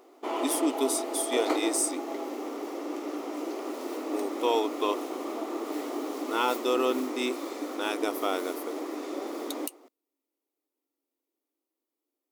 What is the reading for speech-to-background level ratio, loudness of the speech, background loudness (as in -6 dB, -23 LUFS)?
4.0 dB, -30.5 LUFS, -34.5 LUFS